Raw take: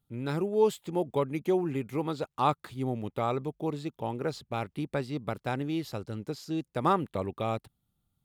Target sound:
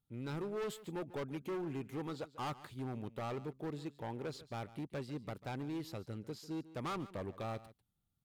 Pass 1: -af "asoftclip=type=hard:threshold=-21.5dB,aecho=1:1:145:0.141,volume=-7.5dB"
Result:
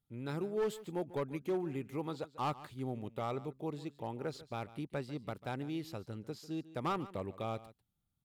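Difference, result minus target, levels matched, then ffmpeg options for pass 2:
hard clip: distortion -8 dB
-af "asoftclip=type=hard:threshold=-29dB,aecho=1:1:145:0.141,volume=-7.5dB"

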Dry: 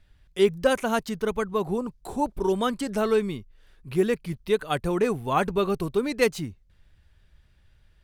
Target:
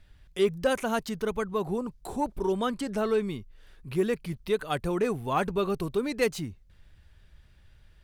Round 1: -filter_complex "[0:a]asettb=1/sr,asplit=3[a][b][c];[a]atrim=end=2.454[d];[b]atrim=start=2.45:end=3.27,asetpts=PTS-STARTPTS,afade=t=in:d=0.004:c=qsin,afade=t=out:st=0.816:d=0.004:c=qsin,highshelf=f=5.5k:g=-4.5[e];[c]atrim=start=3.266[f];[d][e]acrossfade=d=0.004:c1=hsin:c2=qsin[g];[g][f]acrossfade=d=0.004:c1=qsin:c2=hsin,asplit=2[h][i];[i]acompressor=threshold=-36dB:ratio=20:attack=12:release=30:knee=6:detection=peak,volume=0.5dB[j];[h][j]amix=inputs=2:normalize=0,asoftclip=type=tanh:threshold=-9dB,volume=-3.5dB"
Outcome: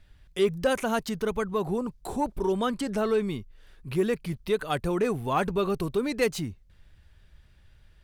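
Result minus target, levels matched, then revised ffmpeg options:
compressor: peak gain reduction -11 dB
-filter_complex "[0:a]asettb=1/sr,asplit=3[a][b][c];[a]atrim=end=2.454[d];[b]atrim=start=2.45:end=3.27,asetpts=PTS-STARTPTS,afade=t=in:d=0.004:c=qsin,afade=t=out:st=0.816:d=0.004:c=qsin,highshelf=f=5.5k:g=-4.5[e];[c]atrim=start=3.266[f];[d][e]acrossfade=d=0.004:c1=hsin:c2=qsin[g];[g][f]acrossfade=d=0.004:c1=qsin:c2=hsin,asplit=2[h][i];[i]acompressor=threshold=-47.5dB:ratio=20:attack=12:release=30:knee=6:detection=peak,volume=0.5dB[j];[h][j]amix=inputs=2:normalize=0,asoftclip=type=tanh:threshold=-9dB,volume=-3.5dB"

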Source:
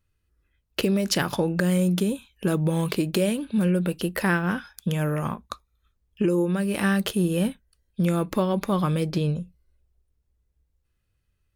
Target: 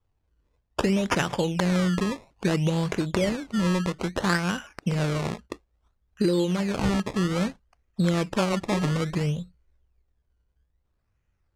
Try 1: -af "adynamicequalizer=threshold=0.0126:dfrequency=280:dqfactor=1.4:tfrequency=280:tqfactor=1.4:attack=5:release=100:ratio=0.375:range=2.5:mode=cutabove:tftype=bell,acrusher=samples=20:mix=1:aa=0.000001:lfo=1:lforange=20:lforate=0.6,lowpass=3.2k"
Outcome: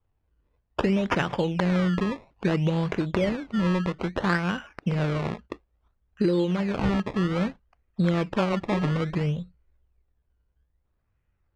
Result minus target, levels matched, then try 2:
8000 Hz band -12.0 dB
-af "adynamicequalizer=threshold=0.0126:dfrequency=280:dqfactor=1.4:tfrequency=280:tqfactor=1.4:attack=5:release=100:ratio=0.375:range=2.5:mode=cutabove:tftype=bell,acrusher=samples=20:mix=1:aa=0.000001:lfo=1:lforange=20:lforate=0.6,lowpass=7.9k"

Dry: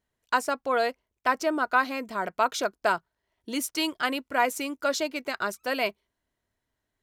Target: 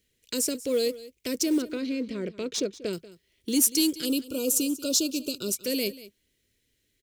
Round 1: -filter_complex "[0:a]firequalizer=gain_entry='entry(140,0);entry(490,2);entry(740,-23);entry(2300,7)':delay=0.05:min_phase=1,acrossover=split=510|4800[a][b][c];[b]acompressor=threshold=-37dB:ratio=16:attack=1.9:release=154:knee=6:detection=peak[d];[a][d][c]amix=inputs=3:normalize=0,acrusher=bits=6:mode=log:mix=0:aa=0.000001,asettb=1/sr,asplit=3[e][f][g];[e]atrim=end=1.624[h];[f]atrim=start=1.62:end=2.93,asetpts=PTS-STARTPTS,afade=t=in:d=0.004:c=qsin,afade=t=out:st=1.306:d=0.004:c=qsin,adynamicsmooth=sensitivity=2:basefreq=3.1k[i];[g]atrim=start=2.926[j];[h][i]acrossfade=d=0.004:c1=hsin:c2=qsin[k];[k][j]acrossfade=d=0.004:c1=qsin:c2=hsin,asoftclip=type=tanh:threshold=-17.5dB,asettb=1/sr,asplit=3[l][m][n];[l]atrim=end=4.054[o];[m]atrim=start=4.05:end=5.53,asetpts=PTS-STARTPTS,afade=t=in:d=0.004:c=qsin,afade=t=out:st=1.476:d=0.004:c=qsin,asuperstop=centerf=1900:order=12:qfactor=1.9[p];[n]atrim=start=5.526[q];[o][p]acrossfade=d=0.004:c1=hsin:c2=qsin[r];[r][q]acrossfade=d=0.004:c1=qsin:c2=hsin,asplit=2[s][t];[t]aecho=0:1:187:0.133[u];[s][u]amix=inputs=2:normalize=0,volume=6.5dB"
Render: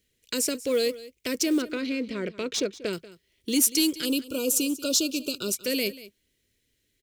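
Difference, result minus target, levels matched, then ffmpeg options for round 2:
compressor: peak gain reduction -8.5 dB
-filter_complex "[0:a]firequalizer=gain_entry='entry(140,0);entry(490,2);entry(740,-23);entry(2300,7)':delay=0.05:min_phase=1,acrossover=split=510|4800[a][b][c];[b]acompressor=threshold=-46dB:ratio=16:attack=1.9:release=154:knee=6:detection=peak[d];[a][d][c]amix=inputs=3:normalize=0,acrusher=bits=6:mode=log:mix=0:aa=0.000001,asettb=1/sr,asplit=3[e][f][g];[e]atrim=end=1.624[h];[f]atrim=start=1.62:end=2.93,asetpts=PTS-STARTPTS,afade=t=in:d=0.004:c=qsin,afade=t=out:st=1.306:d=0.004:c=qsin,adynamicsmooth=sensitivity=2:basefreq=3.1k[i];[g]atrim=start=2.926[j];[h][i]acrossfade=d=0.004:c1=hsin:c2=qsin[k];[k][j]acrossfade=d=0.004:c1=qsin:c2=hsin,asoftclip=type=tanh:threshold=-17.5dB,asettb=1/sr,asplit=3[l][m][n];[l]atrim=end=4.054[o];[m]atrim=start=4.05:end=5.53,asetpts=PTS-STARTPTS,afade=t=in:d=0.004:c=qsin,afade=t=out:st=1.476:d=0.004:c=qsin,asuperstop=centerf=1900:order=12:qfactor=1.9[p];[n]atrim=start=5.526[q];[o][p]acrossfade=d=0.004:c1=hsin:c2=qsin[r];[r][q]acrossfade=d=0.004:c1=qsin:c2=hsin,asplit=2[s][t];[t]aecho=0:1:187:0.133[u];[s][u]amix=inputs=2:normalize=0,volume=6.5dB"

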